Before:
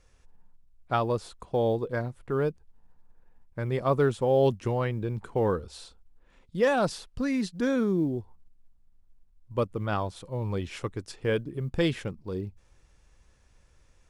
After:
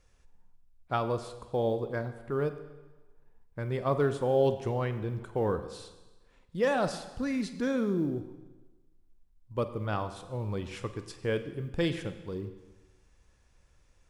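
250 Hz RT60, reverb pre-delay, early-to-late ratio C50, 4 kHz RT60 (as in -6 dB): 1.2 s, 35 ms, 11.5 dB, 1.2 s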